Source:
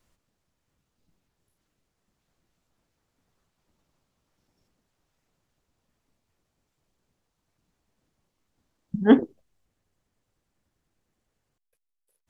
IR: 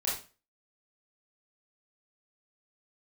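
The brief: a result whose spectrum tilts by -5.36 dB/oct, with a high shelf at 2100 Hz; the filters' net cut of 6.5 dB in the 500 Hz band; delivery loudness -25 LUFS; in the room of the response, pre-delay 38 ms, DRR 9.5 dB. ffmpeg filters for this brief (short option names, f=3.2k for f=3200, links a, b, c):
-filter_complex "[0:a]equalizer=f=500:t=o:g=-8,highshelf=f=2.1k:g=3,asplit=2[a][b];[1:a]atrim=start_sample=2205,adelay=38[c];[b][c]afir=irnorm=-1:irlink=0,volume=-15.5dB[d];[a][d]amix=inputs=2:normalize=0,volume=-2.5dB"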